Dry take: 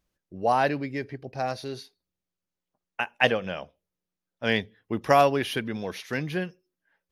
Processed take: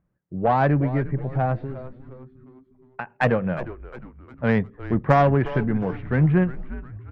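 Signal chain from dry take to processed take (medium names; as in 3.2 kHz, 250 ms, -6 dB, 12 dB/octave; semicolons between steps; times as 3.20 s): low-pass 1.8 kHz 24 dB/octave; peaking EQ 140 Hz +13 dB 1.2 oct; in parallel at +3 dB: peak limiter -15 dBFS, peak gain reduction 8.5 dB; 1.63–3.10 s: on the sum: compression 3:1, threshold -25 dBFS, peak gain reduction 7 dB; Chebyshev shaper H 2 -13 dB, 7 -31 dB, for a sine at -2.5 dBFS; on a send: frequency-shifting echo 357 ms, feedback 47%, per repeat -130 Hz, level -14 dB; on the sum: trim -3 dB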